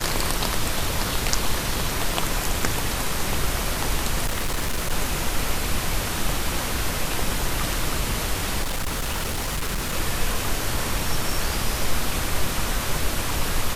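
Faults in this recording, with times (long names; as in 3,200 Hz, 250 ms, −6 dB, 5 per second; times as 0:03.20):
0:04.26–0:04.92: clipping −20 dBFS
0:08.62–0:09.94: clipping −22 dBFS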